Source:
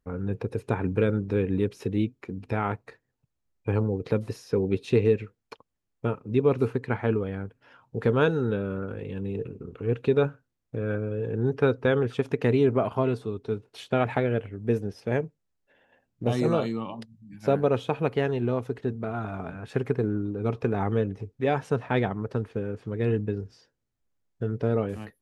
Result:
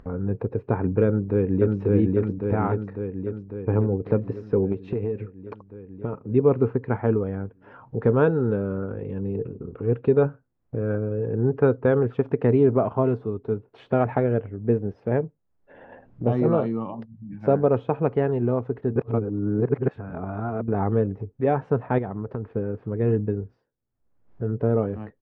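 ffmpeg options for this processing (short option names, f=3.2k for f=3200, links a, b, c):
-filter_complex "[0:a]asplit=2[a][b];[b]afade=t=in:st=1.06:d=0.01,afade=t=out:st=1.77:d=0.01,aecho=0:1:550|1100|1650|2200|2750|3300|3850|4400|4950|5500|6050:0.891251|0.579313|0.376554|0.24476|0.159094|0.103411|0.0672172|0.0436912|0.0283992|0.0184595|0.0119987[c];[a][c]amix=inputs=2:normalize=0,asettb=1/sr,asplit=3[d][e][f];[d]atrim=end=4.724[g];[e]atrim=start=4.72:end=6.13,asetpts=PTS-STARTPTS,afade=t=in:d=0.004:c=qsin,afade=t=out:st=1.406:d=0.004:c=qsin,acompressor=threshold=-25dB:ratio=12:attack=3.2:release=140:knee=1:detection=peak[h];[f]atrim=start=6.126[i];[g][h]acrossfade=d=0.004:c1=hsin:c2=qsin[j];[j][i]acrossfade=d=0.004:c1=qsin:c2=hsin,asettb=1/sr,asplit=3[k][l][m];[k]atrim=end=21.984[n];[l]atrim=start=21.98:end=22.53,asetpts=PTS-STARTPTS,afade=t=in:d=0.004:c=qsin,afade=t=out:st=0.546:d=0.004:c=qsin,acompressor=threshold=-28dB:ratio=5:attack=3.2:release=140:knee=1:detection=peak[o];[m]atrim=start=22.526[p];[n][o]acrossfade=d=0.004:c1=hsin:c2=qsin[q];[q][p]acrossfade=d=0.004:c1=qsin:c2=hsin,asplit=5[r][s][t][u][v];[r]atrim=end=18.962[w];[s]atrim=start=18.958:end=20.682,asetpts=PTS-STARTPTS,areverse[x];[t]atrim=start=20.678:end=23.65,asetpts=PTS-STARTPTS,afade=t=out:st=2.732:d=0.24:silence=0.133352[y];[u]atrim=start=23.65:end=24.26,asetpts=PTS-STARTPTS,volume=-17.5dB[z];[v]atrim=start=24.26,asetpts=PTS-STARTPTS,afade=t=in:d=0.24:silence=0.133352[aa];[w][x]acrossfade=d=0.004:c1=hsin:c2=hsin[ab];[y][z][aa]concat=n=3:v=0:a=1[ac];[ab][ac]acrossfade=d=0.004:c1=hsin:c2=hsin,lowpass=1.2k,acompressor=mode=upward:threshold=-34dB:ratio=2.5,volume=3.5dB"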